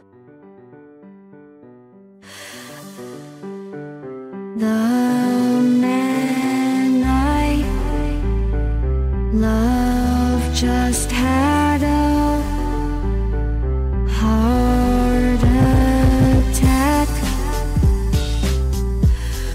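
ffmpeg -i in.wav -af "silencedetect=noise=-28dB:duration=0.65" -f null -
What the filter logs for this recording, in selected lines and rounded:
silence_start: 0.00
silence_end: 2.34 | silence_duration: 2.34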